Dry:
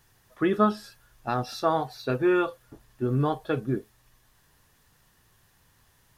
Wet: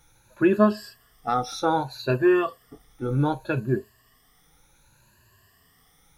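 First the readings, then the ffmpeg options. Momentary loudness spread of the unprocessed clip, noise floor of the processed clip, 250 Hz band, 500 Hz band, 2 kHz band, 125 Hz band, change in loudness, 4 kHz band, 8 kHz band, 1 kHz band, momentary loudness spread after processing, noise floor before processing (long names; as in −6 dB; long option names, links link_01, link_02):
9 LU, −61 dBFS, +3.5 dB, +3.0 dB, +3.5 dB, +2.5 dB, +3.0 dB, +2.5 dB, can't be measured, +2.0 dB, 11 LU, −64 dBFS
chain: -af "afftfilt=real='re*pow(10,16/40*sin(2*PI*(1.4*log(max(b,1)*sr/1024/100)/log(2)-(0.65)*(pts-256)/sr)))':imag='im*pow(10,16/40*sin(2*PI*(1.4*log(max(b,1)*sr/1024/100)/log(2)-(0.65)*(pts-256)/sr)))':win_size=1024:overlap=0.75"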